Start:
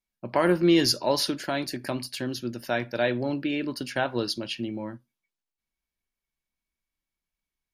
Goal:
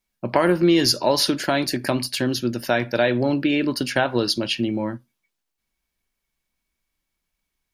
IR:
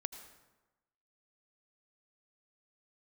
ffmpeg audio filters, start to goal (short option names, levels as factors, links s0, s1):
-af "acompressor=threshold=0.0562:ratio=2.5,volume=2.82"